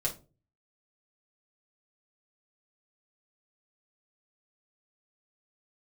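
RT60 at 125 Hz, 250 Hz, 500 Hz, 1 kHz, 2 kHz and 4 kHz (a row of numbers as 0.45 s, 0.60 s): 0.65 s, 0.45 s, 0.40 s, 0.30 s, 0.25 s, 0.20 s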